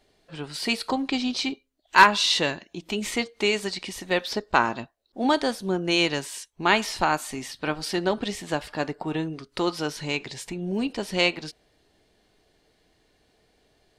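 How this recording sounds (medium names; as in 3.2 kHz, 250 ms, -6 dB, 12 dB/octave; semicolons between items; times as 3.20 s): noise floor -67 dBFS; spectral tilt -3.5 dB/octave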